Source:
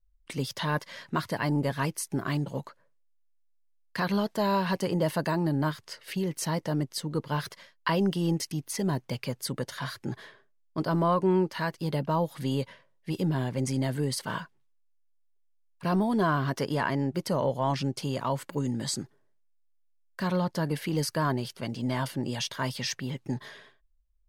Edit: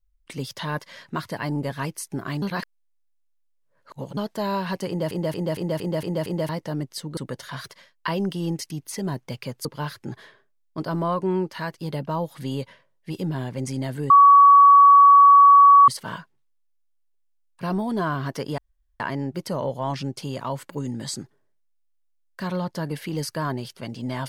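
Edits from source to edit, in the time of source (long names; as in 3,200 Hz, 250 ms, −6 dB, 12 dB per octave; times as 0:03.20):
0:02.42–0:04.17: reverse
0:04.88: stutter in place 0.23 s, 7 plays
0:07.17–0:07.45: swap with 0:09.46–0:09.93
0:14.10: insert tone 1,130 Hz −8 dBFS 1.78 s
0:16.80: splice in room tone 0.42 s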